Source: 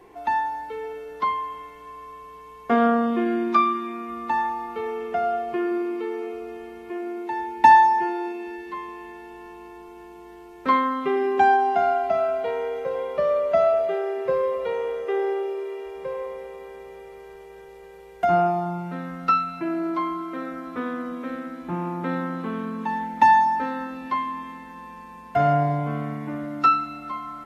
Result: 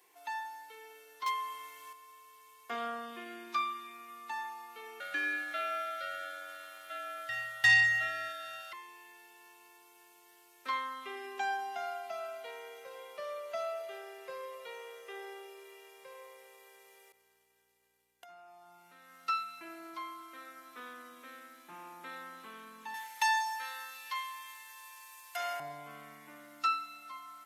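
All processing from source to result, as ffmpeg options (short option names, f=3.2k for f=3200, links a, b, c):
-filter_complex "[0:a]asettb=1/sr,asplit=3[a][b][c];[a]atrim=end=1.264[d];[b]atrim=start=1.26:end=1.93,asetpts=PTS-STARTPTS,afade=t=in:d=0.004:c=qsin,afade=t=out:st=0.666:d=0.004:c=qsin,acontrast=75,asoftclip=type=hard:threshold=-12.5dB[e];[c]atrim=start=1.926[f];[d][e]acrossfade=d=0.004:c1=hsin:c2=qsin[g];[g][f]acrossfade=d=0.004:c1=qsin:c2=hsin,asettb=1/sr,asplit=3[h][i][j];[h]atrim=end=5.004[k];[i]atrim=start=5:end=8.73,asetpts=PTS-STARTPTS,afade=t=in:d=0.004:c=qsin,afade=t=out:st=3.726:d=0.004:c=qsin,acontrast=70,aeval=exprs='val(0)*sin(2*PI*1000*n/s)':c=same[l];[j]atrim=start=8.726[m];[k][l]acrossfade=d=0.004:c1=hsin:c2=qsin[n];[n][m]acrossfade=d=0.004:c1=qsin:c2=hsin,asettb=1/sr,asplit=3[o][p][q];[o]atrim=end=17.124[r];[p]atrim=start=17.12:end=19.28,asetpts=PTS-STARTPTS,afade=t=in:d=0.004:c=qsin,afade=t=out:st=2.156:d=0.004:c=qsin,agate=range=-33dB:threshold=-36dB:ratio=3:release=100:detection=peak,acompressor=threshold=-33dB:ratio=16:attack=3.2:release=140:knee=1:detection=peak,aeval=exprs='val(0)+0.00178*(sin(2*PI*60*n/s)+sin(2*PI*2*60*n/s)/2+sin(2*PI*3*60*n/s)/3+sin(2*PI*4*60*n/s)/4+sin(2*PI*5*60*n/s)/5)':c=same[s];[q]atrim=start=19.276[t];[r][s]acrossfade=d=0.004:c1=hsin:c2=qsin[u];[u][t]acrossfade=d=0.004:c1=qsin:c2=hsin,asettb=1/sr,asplit=3[v][w][x];[v]atrim=end=22.944[y];[w]atrim=start=22.94:end=25.6,asetpts=PTS-STARTPTS,afade=t=in:d=0.004:c=qsin,afade=t=out:st=2.656:d=0.004:c=qsin,highpass=610,highshelf=f=2.1k:g=10[z];[x]atrim=start=25.596[aa];[y][z]acrossfade=d=0.004:c1=hsin:c2=qsin[ab];[ab][aa]acrossfade=d=0.004:c1=qsin:c2=hsin,aderivative,bandreject=f=86.49:t=h:w=4,bandreject=f=172.98:t=h:w=4,bandreject=f=259.47:t=h:w=4,bandreject=f=345.96:t=h:w=4,bandreject=f=432.45:t=h:w=4,bandreject=f=518.94:t=h:w=4,bandreject=f=605.43:t=h:w=4,bandreject=f=691.92:t=h:w=4,bandreject=f=778.41:t=h:w=4,bandreject=f=864.9:t=h:w=4,bandreject=f=951.39:t=h:w=4,bandreject=f=1.03788k:t=h:w=4,bandreject=f=1.12437k:t=h:w=4,bandreject=f=1.21086k:t=h:w=4,bandreject=f=1.29735k:t=h:w=4,bandreject=f=1.38384k:t=h:w=4,bandreject=f=1.47033k:t=h:w=4,bandreject=f=1.55682k:t=h:w=4,bandreject=f=1.64331k:t=h:w=4,bandreject=f=1.7298k:t=h:w=4,bandreject=f=1.81629k:t=h:w=4,bandreject=f=1.90278k:t=h:w=4,bandreject=f=1.98927k:t=h:w=4,bandreject=f=2.07576k:t=h:w=4,bandreject=f=2.16225k:t=h:w=4,bandreject=f=2.24874k:t=h:w=4,bandreject=f=2.33523k:t=h:w=4,volume=1.5dB"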